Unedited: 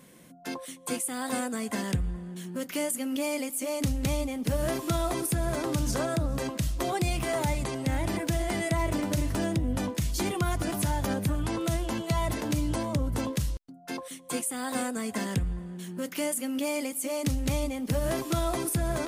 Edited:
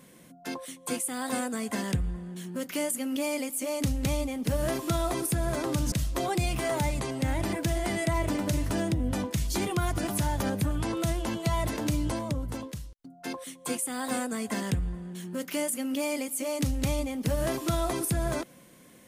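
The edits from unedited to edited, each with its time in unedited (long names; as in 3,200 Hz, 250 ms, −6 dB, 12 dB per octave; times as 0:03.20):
0:05.92–0:06.56: remove
0:12.66–0:13.63: fade out, to −17.5 dB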